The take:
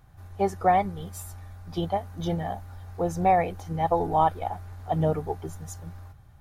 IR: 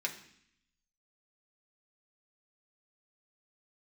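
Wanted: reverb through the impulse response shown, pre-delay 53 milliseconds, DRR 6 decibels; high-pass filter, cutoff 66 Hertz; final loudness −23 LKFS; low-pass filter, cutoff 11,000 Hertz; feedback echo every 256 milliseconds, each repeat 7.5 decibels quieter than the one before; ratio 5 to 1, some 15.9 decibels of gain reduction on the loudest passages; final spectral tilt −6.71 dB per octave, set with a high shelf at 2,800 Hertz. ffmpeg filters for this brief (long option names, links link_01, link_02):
-filter_complex "[0:a]highpass=66,lowpass=11000,highshelf=frequency=2800:gain=-4,acompressor=threshold=-35dB:ratio=5,aecho=1:1:256|512|768|1024|1280:0.422|0.177|0.0744|0.0312|0.0131,asplit=2[link_01][link_02];[1:a]atrim=start_sample=2205,adelay=53[link_03];[link_02][link_03]afir=irnorm=-1:irlink=0,volume=-9.5dB[link_04];[link_01][link_04]amix=inputs=2:normalize=0,volume=15dB"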